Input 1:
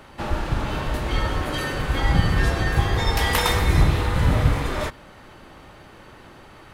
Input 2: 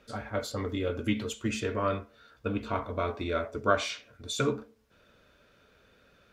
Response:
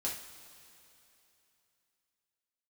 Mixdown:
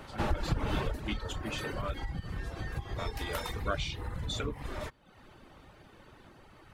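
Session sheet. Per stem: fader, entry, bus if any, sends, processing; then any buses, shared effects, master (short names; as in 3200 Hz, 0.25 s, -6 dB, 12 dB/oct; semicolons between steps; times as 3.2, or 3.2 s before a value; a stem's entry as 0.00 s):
0.8 s -3 dB -> 1.01 s -10 dB, 0.00 s, no send, low shelf 410 Hz +3.5 dB; compressor 16:1, threshold -21 dBFS, peak gain reduction 14 dB
-9.5 dB, 0.00 s, muted 1.94–2.98, no send, bell 3300 Hz +8.5 dB 1.2 oct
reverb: off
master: reverb removal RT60 0.67 s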